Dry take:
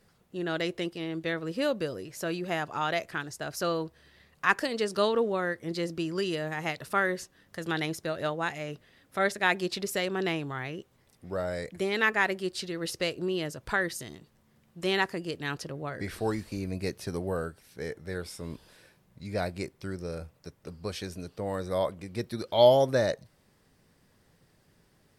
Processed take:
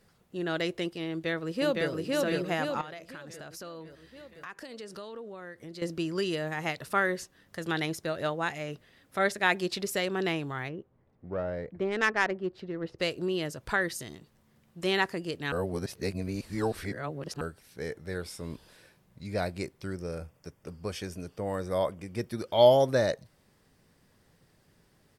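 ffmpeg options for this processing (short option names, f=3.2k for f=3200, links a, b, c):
-filter_complex "[0:a]asplit=2[a][b];[b]afade=t=in:st=1.1:d=0.01,afade=t=out:st=1.91:d=0.01,aecho=0:1:510|1020|1530|2040|2550|3060|3570|4080:0.891251|0.490188|0.269603|0.148282|0.081555|0.0448553|0.0246704|0.0135687[c];[a][c]amix=inputs=2:normalize=0,asettb=1/sr,asplit=3[d][e][f];[d]atrim=end=2.814[g];[e]atrim=start=2.81:end=5.82,asetpts=PTS-STARTPTS,afade=t=in:d=0.004:c=qsin,afade=t=out:st=3.006:d=0.004:c=qsin,acompressor=threshold=-42dB:ratio=4:attack=3.2:release=140:knee=1:detection=peak[h];[f]atrim=start=5.816[i];[g][h]acrossfade=d=0.004:c1=hsin:c2=qsin[j];[j][i]acrossfade=d=0.004:c1=qsin:c2=hsin,asplit=3[k][l][m];[k]afade=t=out:st=10.68:d=0.02[n];[l]adynamicsmooth=sensitivity=1:basefreq=1.2k,afade=t=in:st=10.68:d=0.02,afade=t=out:st=12.98:d=0.02[o];[m]afade=t=in:st=12.98:d=0.02[p];[n][o][p]amix=inputs=3:normalize=0,asettb=1/sr,asplit=3[q][r][s];[q]atrim=end=19.934[t];[r]atrim=start=19.93:end=22.8,asetpts=PTS-STARTPTS,afade=t=in:d=0.004:c=qsin,afade=t=out:st=2.866:d=0.004:c=qsin,bandreject=f=4k:w=5[u];[s]atrim=start=22.796[v];[t][u]acrossfade=d=0.004:c1=hsin:c2=qsin[w];[w][v]acrossfade=d=0.004:c1=qsin:c2=hsin,asplit=3[x][y][z];[x]atrim=end=15.522[aa];[y]atrim=start=15.518:end=17.412,asetpts=PTS-STARTPTS,areverse[ab];[z]atrim=start=17.408[ac];[aa][ab]acrossfade=d=0.004:c1=hsin:c2=hsin[ad];[ad][ac]acrossfade=d=0.004:c1=hsin:c2=hsin"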